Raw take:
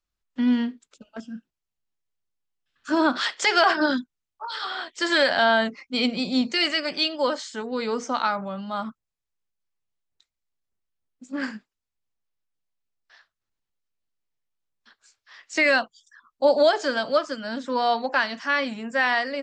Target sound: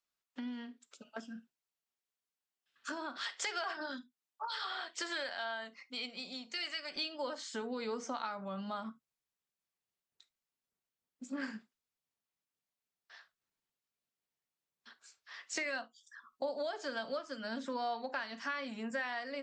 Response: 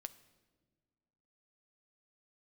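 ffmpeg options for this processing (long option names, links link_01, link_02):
-filter_complex "[0:a]acompressor=threshold=-35dB:ratio=5,asetnsamples=nb_out_samples=441:pad=0,asendcmd='5.29 highpass f 1000;6.96 highpass f 150',highpass=frequency=480:poles=1[link_01];[1:a]atrim=start_sample=2205,atrim=end_sample=4410,asetrate=57330,aresample=44100[link_02];[link_01][link_02]afir=irnorm=-1:irlink=0,volume=5.5dB"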